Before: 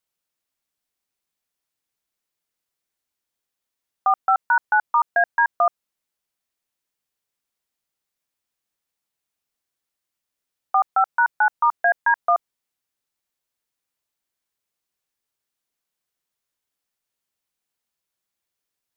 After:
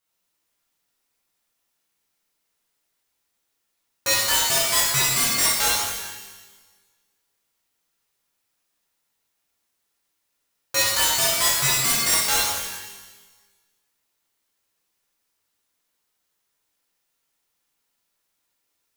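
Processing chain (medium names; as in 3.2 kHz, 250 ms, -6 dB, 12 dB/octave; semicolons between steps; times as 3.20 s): integer overflow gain 20 dB; pitch-shifted reverb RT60 1.3 s, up +12 st, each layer -8 dB, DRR -7.5 dB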